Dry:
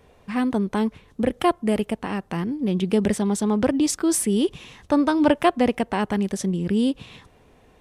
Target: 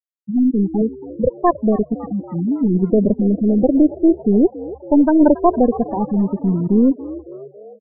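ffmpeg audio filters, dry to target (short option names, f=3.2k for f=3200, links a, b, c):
-filter_complex "[0:a]asettb=1/sr,asplit=3[a][b][c];[a]atrim=end=0.814[d];[b]atrim=start=0.81:end=1.53,asetpts=PTS-STARTPTS,afade=t=in:d=0.004:c=qsin,afade=t=out:st=0.716:d=0.004:c=qsin,equalizer=f=125:t=o:w=1:g=11,equalizer=f=250:t=o:w=1:g=-10,equalizer=f=500:t=o:w=1:g=3[e];[c]atrim=start=1.526[f];[d][e]acrossfade=d=0.004:c1=hsin:c2=qsin[g];[g][f]acrossfade=d=0.004:c1=qsin:c2=hsin,aeval=exprs='0.631*(cos(1*acos(clip(val(0)/0.631,-1,1)))-cos(1*PI/2))+0.00562*(cos(3*acos(clip(val(0)/0.631,-1,1)))-cos(3*PI/2))+0.00891*(cos(5*acos(clip(val(0)/0.631,-1,1)))-cos(5*PI/2))+0.0891*(cos(6*acos(clip(val(0)/0.631,-1,1)))-cos(6*PI/2))+0.00501*(cos(8*acos(clip(val(0)/0.631,-1,1)))-cos(8*PI/2))':c=same,equalizer=f=320:w=0.48:g=6,asplit=2[h][i];[i]alimiter=limit=-8.5dB:level=0:latency=1:release=104,volume=-2.5dB[j];[h][j]amix=inputs=2:normalize=0,afftfilt=real='re*gte(hypot(re,im),0.708)':imag='im*gte(hypot(re,im),0.708)':win_size=1024:overlap=0.75,asplit=2[k][l];[l]asplit=5[m][n][o][p][q];[m]adelay=278,afreqshift=70,volume=-17dB[r];[n]adelay=556,afreqshift=140,volume=-21.9dB[s];[o]adelay=834,afreqshift=210,volume=-26.8dB[t];[p]adelay=1112,afreqshift=280,volume=-31.6dB[u];[q]adelay=1390,afreqshift=350,volume=-36.5dB[v];[r][s][t][u][v]amix=inputs=5:normalize=0[w];[k][w]amix=inputs=2:normalize=0,volume=-2dB"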